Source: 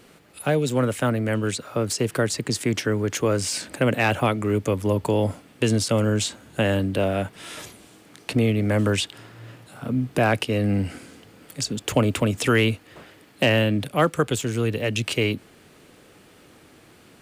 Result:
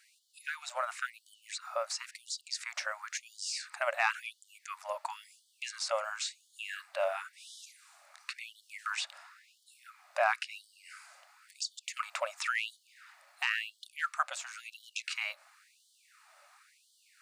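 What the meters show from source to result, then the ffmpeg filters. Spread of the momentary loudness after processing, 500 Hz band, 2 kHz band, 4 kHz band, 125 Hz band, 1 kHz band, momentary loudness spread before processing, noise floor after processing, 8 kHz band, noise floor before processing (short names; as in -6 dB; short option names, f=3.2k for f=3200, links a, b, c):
18 LU, -16.5 dB, -7.0 dB, -10.0 dB, under -40 dB, -7.5 dB, 10 LU, -70 dBFS, -10.5 dB, -52 dBFS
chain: -filter_complex "[0:a]acrossover=split=7500[a][b];[b]acompressor=threshold=-51dB:ratio=4:attack=1:release=60[c];[a][c]amix=inputs=2:normalize=0,equalizer=f=1.25k:t=o:w=0.33:g=5,equalizer=f=3.15k:t=o:w=0.33:g=-10,equalizer=f=12.5k:t=o:w=0.33:g=-10,afftfilt=real='re*gte(b*sr/1024,530*pow(3000/530,0.5+0.5*sin(2*PI*0.96*pts/sr)))':imag='im*gte(b*sr/1024,530*pow(3000/530,0.5+0.5*sin(2*PI*0.96*pts/sr)))':win_size=1024:overlap=0.75,volume=-5.5dB"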